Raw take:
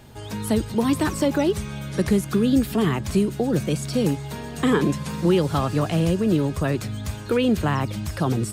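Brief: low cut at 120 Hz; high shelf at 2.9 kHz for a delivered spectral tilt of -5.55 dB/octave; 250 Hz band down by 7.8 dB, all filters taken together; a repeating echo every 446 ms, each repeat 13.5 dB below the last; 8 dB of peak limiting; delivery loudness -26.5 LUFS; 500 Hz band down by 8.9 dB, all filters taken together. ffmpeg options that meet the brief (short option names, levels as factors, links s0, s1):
-af "highpass=120,equalizer=f=250:t=o:g=-7.5,equalizer=f=500:t=o:g=-8.5,highshelf=f=2900:g=-5,alimiter=limit=0.0944:level=0:latency=1,aecho=1:1:446|892:0.211|0.0444,volume=1.68"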